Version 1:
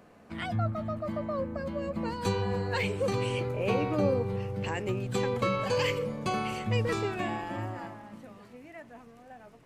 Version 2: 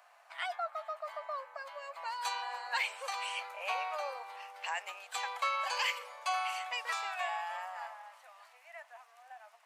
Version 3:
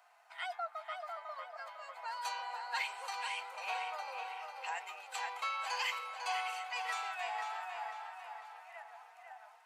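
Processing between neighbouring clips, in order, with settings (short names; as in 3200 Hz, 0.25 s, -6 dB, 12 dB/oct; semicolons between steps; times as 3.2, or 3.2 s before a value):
steep high-pass 680 Hz 48 dB/oct
notch comb 570 Hz; tape echo 0.499 s, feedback 51%, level -5 dB, low-pass 5000 Hz; gain -2.5 dB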